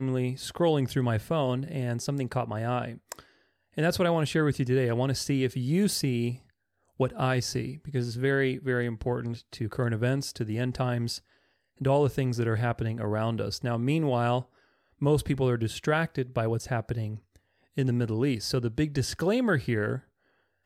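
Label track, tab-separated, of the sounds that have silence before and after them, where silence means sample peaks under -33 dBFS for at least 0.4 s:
3.780000	6.350000	sound
7.000000	11.170000	sound
11.810000	14.410000	sound
15.020000	17.160000	sound
17.780000	19.980000	sound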